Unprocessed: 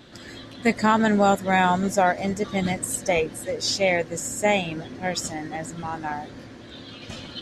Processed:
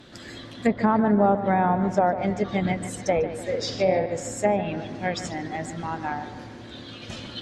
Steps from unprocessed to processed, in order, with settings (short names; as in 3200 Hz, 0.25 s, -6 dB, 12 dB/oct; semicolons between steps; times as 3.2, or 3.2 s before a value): 3.45–4.06 doubler 48 ms -3.5 dB; treble ducked by the level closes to 960 Hz, closed at -16.5 dBFS; on a send: analogue delay 0.147 s, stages 4096, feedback 50%, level -12 dB